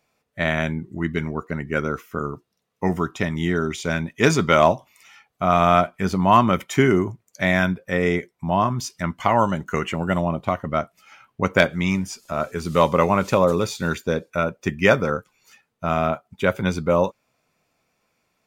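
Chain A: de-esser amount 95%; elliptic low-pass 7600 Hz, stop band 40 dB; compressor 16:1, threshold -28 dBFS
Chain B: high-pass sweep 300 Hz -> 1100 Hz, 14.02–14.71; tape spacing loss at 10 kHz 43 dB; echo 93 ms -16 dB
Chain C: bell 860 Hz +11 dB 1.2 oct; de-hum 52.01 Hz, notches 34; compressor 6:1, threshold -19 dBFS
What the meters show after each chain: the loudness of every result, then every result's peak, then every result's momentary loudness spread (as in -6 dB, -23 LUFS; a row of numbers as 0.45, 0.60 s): -34.5, -23.0, -25.5 LUFS; -15.5, -2.5, -4.5 dBFS; 5, 11, 6 LU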